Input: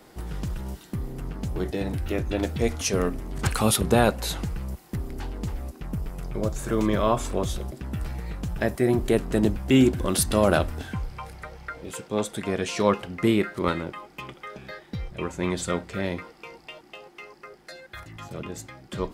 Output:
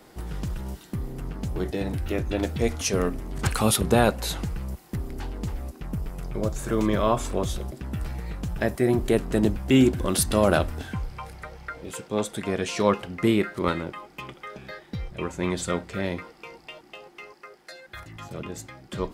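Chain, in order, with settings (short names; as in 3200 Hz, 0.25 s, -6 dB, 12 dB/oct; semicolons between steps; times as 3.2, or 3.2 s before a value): 17.32–17.87 low shelf 220 Hz -12 dB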